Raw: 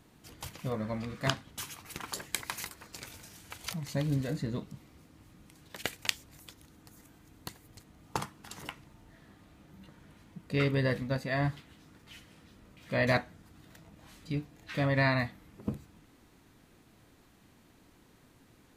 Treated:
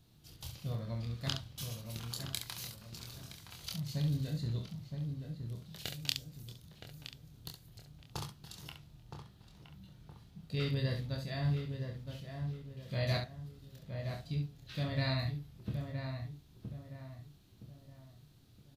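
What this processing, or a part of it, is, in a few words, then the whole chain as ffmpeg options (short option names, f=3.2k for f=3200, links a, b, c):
slapback doubling: -filter_complex "[0:a]equalizer=f=125:t=o:w=1:g=4,equalizer=f=250:t=o:w=1:g=-9,equalizer=f=500:t=o:w=1:g=-6,equalizer=f=1k:t=o:w=1:g=-9,equalizer=f=2k:t=o:w=1:g=-11,equalizer=f=4k:t=o:w=1:g=5,equalizer=f=8k:t=o:w=1:g=-7,asplit=3[a][b][c];[b]adelay=26,volume=-4dB[d];[c]adelay=68,volume=-7dB[e];[a][d][e]amix=inputs=3:normalize=0,asplit=2[f][g];[g]adelay=968,lowpass=f=1.6k:p=1,volume=-6dB,asplit=2[h][i];[i]adelay=968,lowpass=f=1.6k:p=1,volume=0.39,asplit=2[j][k];[k]adelay=968,lowpass=f=1.6k:p=1,volume=0.39,asplit=2[l][m];[m]adelay=968,lowpass=f=1.6k:p=1,volume=0.39,asplit=2[n][o];[o]adelay=968,lowpass=f=1.6k:p=1,volume=0.39[p];[f][h][j][l][n][p]amix=inputs=6:normalize=0,volume=-2.5dB"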